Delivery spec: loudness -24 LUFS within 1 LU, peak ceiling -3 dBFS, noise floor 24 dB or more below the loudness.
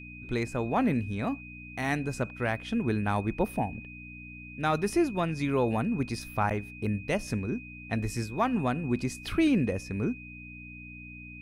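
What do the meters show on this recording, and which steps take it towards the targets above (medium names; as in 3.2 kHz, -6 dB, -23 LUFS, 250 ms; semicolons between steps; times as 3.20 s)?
hum 60 Hz; highest harmonic 300 Hz; hum level -44 dBFS; steady tone 2.5 kHz; tone level -45 dBFS; loudness -30.0 LUFS; peak level -14.5 dBFS; loudness target -24.0 LUFS
-> de-hum 60 Hz, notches 5; band-stop 2.5 kHz, Q 30; trim +6 dB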